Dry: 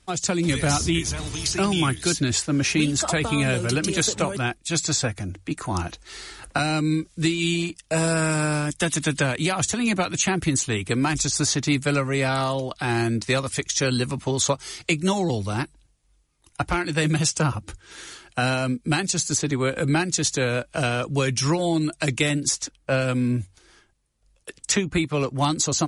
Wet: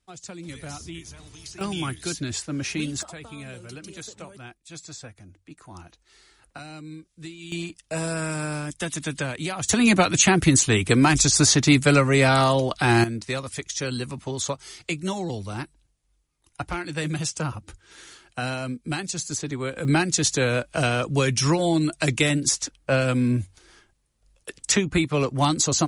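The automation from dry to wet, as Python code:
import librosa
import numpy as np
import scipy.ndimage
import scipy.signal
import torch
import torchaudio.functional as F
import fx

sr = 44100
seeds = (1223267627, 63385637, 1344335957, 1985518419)

y = fx.gain(x, sr, db=fx.steps((0.0, -15.5), (1.61, -7.0), (3.03, -17.0), (7.52, -6.0), (9.69, 5.0), (13.04, -6.0), (19.85, 1.0)))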